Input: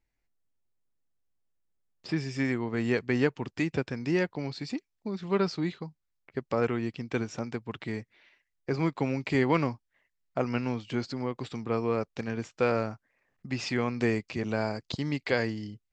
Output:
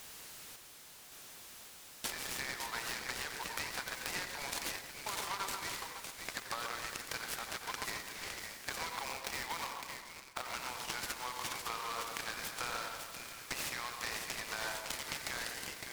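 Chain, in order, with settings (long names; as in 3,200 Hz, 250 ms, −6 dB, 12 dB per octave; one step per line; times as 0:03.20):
camcorder AGC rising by 6.1 dB per second
high-pass filter 890 Hz 24 dB per octave
high-shelf EQ 4,500 Hz +10.5 dB
brickwall limiter −22.5 dBFS, peak gain reduction 9.5 dB
downward compressor 6 to 1, threshold −47 dBFS, peak gain reduction 16 dB
steady tone 6,500 Hz −56 dBFS
echo with a time of its own for lows and highs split 1,700 Hz, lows 134 ms, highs 559 ms, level −5.5 dB
on a send at −7 dB: convolution reverb RT60 0.25 s, pre-delay 85 ms
0:09.05–0:10.54: on the sum: bad sample-rate conversion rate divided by 6×, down filtered, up hold
short delay modulated by noise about 2,400 Hz, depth 0.065 ms
level +8.5 dB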